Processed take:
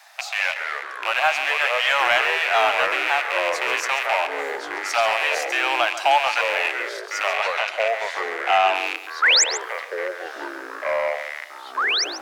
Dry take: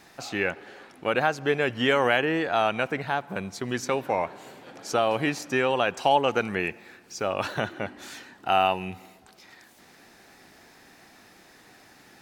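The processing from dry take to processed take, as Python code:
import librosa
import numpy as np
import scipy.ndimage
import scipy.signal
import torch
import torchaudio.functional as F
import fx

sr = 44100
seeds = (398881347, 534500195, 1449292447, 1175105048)

p1 = fx.rattle_buzz(x, sr, strikes_db=-42.0, level_db=-17.0)
p2 = scipy.signal.sosfilt(scipy.signal.butter(12, 610.0, 'highpass', fs=sr, output='sos'), p1)
p3 = np.clip(10.0 ** (17.0 / 20.0) * p2, -1.0, 1.0) / 10.0 ** (17.0 / 20.0)
p4 = p2 + F.gain(torch.from_numpy(p3), -3.0).numpy()
p5 = fx.air_absorb(p4, sr, metres=58.0, at=(7.33, 8.75))
p6 = fx.spec_paint(p5, sr, seeds[0], shape='rise', start_s=9.22, length_s=0.22, low_hz=1200.0, high_hz=8000.0, level_db=-15.0)
p7 = fx.echo_pitch(p6, sr, ms=152, semitones=-4, count=3, db_per_echo=-6.0)
y = p7 + fx.echo_single(p7, sr, ms=138, db=-12.0, dry=0)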